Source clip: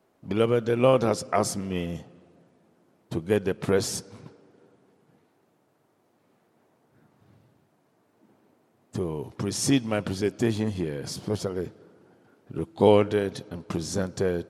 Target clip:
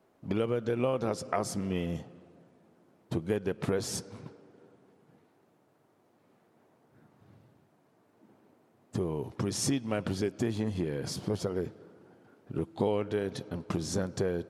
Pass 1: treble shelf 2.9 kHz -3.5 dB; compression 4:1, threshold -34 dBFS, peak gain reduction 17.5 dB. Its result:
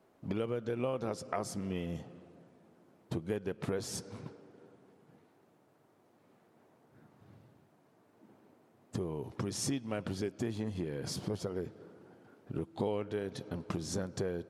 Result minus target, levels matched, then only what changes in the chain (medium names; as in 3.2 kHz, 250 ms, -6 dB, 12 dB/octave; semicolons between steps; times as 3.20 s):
compression: peak gain reduction +5 dB
change: compression 4:1, threshold -27 dBFS, peak gain reduction 12.5 dB